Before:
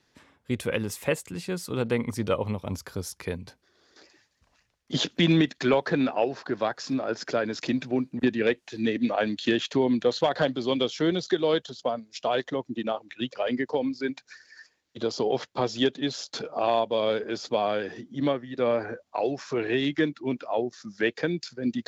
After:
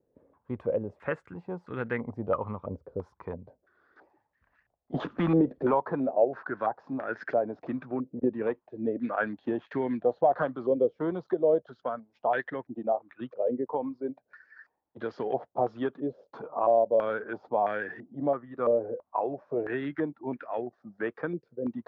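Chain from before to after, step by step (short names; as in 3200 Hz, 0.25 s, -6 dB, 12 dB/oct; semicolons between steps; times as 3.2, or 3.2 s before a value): 4.94–5.71 power-law curve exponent 0.7; stepped low-pass 3 Hz 510–1700 Hz; gain -7 dB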